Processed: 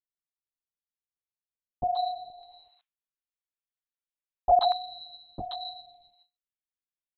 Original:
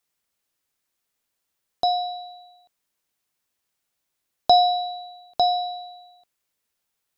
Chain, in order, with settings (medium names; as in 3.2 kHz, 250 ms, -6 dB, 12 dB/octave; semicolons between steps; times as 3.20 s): hum notches 50/100/150/200/250/300/350 Hz; LPC vocoder at 8 kHz whisper; peaking EQ 2 kHz -15 dB 1.7 oct, from 2.30 s 190 Hz, from 4.59 s 700 Hz; gate with hold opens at -52 dBFS; dynamic bell 1.2 kHz, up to +6 dB, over -40 dBFS, Q 1.5; bands offset in time lows, highs 130 ms, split 830 Hz